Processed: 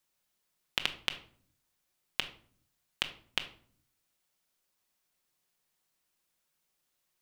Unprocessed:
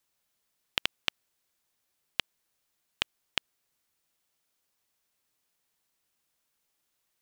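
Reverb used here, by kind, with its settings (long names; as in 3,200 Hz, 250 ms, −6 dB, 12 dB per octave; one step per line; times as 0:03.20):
rectangular room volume 660 cubic metres, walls furnished, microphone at 0.98 metres
level −2 dB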